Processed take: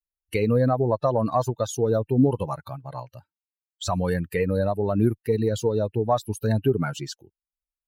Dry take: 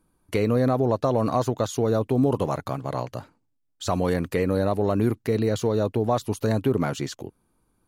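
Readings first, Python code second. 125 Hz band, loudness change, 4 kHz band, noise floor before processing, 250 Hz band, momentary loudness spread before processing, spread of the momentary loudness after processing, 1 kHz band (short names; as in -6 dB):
+0.5 dB, +0.5 dB, -0.5 dB, -72 dBFS, -1.0 dB, 10 LU, 13 LU, 0.0 dB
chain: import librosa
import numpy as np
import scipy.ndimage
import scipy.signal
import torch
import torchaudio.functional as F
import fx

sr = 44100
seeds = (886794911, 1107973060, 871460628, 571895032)

y = fx.bin_expand(x, sr, power=2.0)
y = fx.cheby_harmonics(y, sr, harmonics=(2,), levels_db=(-31,), full_scale_db=-13.5)
y = F.gain(torch.from_numpy(y), 4.5).numpy()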